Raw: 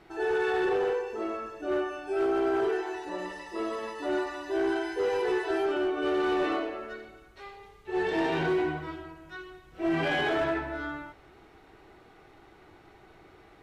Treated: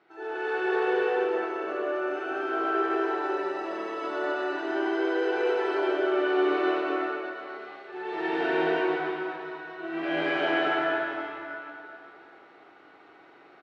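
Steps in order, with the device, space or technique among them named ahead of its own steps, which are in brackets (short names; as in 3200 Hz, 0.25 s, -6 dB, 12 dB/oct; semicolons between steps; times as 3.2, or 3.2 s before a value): station announcement (BPF 300–4000 Hz; bell 1400 Hz +6 dB 0.26 oct; loudspeakers at several distances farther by 25 m -4 dB, 85 m -1 dB; reverb RT60 2.7 s, pre-delay 96 ms, DRR -6 dB); gain -8 dB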